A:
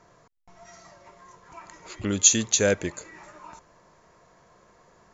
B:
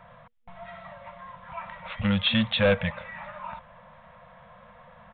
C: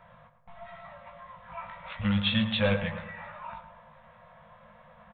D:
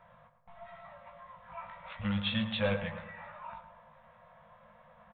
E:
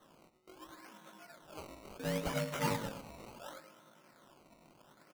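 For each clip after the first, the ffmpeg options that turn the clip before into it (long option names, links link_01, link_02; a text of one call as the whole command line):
ffmpeg -i in.wav -af "afftfilt=real='re*(1-between(b*sr/4096,230,480))':imag='im*(1-between(b*sr/4096,230,480))':win_size=4096:overlap=0.75,aresample=8000,asoftclip=type=tanh:threshold=-24dB,aresample=44100,volume=7.5dB" out.wav
ffmpeg -i in.wav -filter_complex "[0:a]asplit=2[link_01][link_02];[link_02]adelay=19,volume=-5dB[link_03];[link_01][link_03]amix=inputs=2:normalize=0,asplit=2[link_04][link_05];[link_05]adelay=109,lowpass=frequency=2000:poles=1,volume=-9dB,asplit=2[link_06][link_07];[link_07]adelay=109,lowpass=frequency=2000:poles=1,volume=0.51,asplit=2[link_08][link_09];[link_09]adelay=109,lowpass=frequency=2000:poles=1,volume=0.51,asplit=2[link_10][link_11];[link_11]adelay=109,lowpass=frequency=2000:poles=1,volume=0.51,asplit=2[link_12][link_13];[link_13]adelay=109,lowpass=frequency=2000:poles=1,volume=0.51,asplit=2[link_14][link_15];[link_15]adelay=109,lowpass=frequency=2000:poles=1,volume=0.51[link_16];[link_06][link_08][link_10][link_12][link_14][link_16]amix=inputs=6:normalize=0[link_17];[link_04][link_17]amix=inputs=2:normalize=0,volume=-5dB" out.wav
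ffmpeg -i in.wav -af "equalizer=frequency=760:width_type=o:width=2.3:gain=3,volume=-6.5dB" out.wav
ffmpeg -i in.wav -af "aeval=exprs='val(0)*sin(2*PI*370*n/s)':channel_layout=same,acrusher=samples=18:mix=1:aa=0.000001:lfo=1:lforange=18:lforate=0.71,volume=-1dB" out.wav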